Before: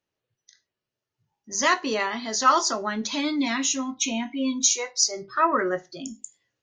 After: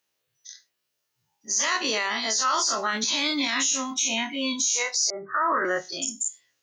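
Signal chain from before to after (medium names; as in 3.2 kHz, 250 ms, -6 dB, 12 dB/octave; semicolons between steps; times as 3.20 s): every event in the spectrogram widened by 60 ms; tilt EQ +3 dB/octave; peak limiter -15.5 dBFS, peak gain reduction 18 dB; 5.10–5.65 s: steep low-pass 1.9 kHz 96 dB/octave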